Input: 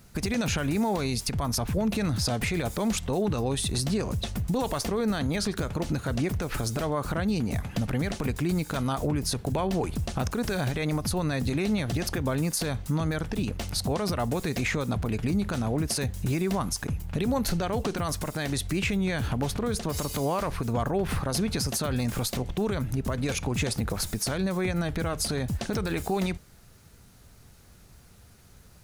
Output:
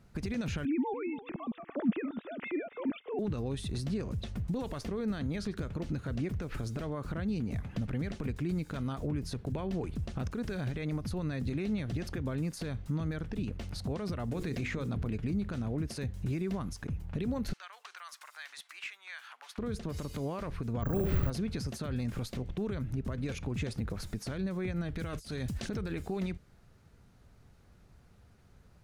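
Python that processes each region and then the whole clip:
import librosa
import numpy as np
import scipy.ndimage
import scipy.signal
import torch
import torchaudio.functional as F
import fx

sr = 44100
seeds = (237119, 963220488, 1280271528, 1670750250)

y = fx.chain(x, sr, fx.sine_speech(),
    fx.echo_feedback(ms=285, feedback_pct=17, wet_db=-15), at=(0.65, 3.19))
y = fx.chain(y, sr, fx.hum_notches(base_hz=50, count=9),
    fx.env_flatten(amount_pct=70), at=(14.28, 15.16))
y = fx.chain(y, sr, fx.highpass(hz=1100.0, slope=24),
    fx.overload_stage(gain_db=23.5), at=(17.53, 19.58))
y = fx.chain(y, sr, fx.low_shelf(hz=210.0, db=6.5),
    fx.room_flutter(wall_m=11.9, rt60_s=0.96),
    fx.resample_bad(factor=2, down='filtered', up='zero_stuff'), at=(20.82, 21.3))
y = fx.chain(y, sr, fx.high_shelf(hz=2500.0, db=11.0),
    fx.over_compress(threshold_db=-30.0, ratio=-1.0), at=(24.96, 25.69))
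y = fx.dynamic_eq(y, sr, hz=820.0, q=1.1, threshold_db=-45.0, ratio=4.0, max_db=-8)
y = fx.lowpass(y, sr, hz=1900.0, slope=6)
y = y * 10.0 ** (-5.5 / 20.0)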